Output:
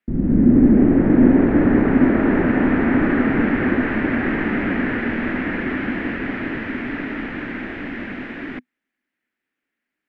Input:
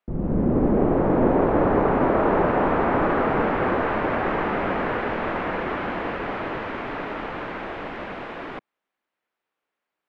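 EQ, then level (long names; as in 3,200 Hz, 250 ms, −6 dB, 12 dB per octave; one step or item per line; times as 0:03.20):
drawn EQ curve 180 Hz 0 dB, 250 Hz +9 dB, 470 Hz −8 dB, 1,100 Hz −12 dB, 1,800 Hz +4 dB, 3,700 Hz −6 dB
+4.0 dB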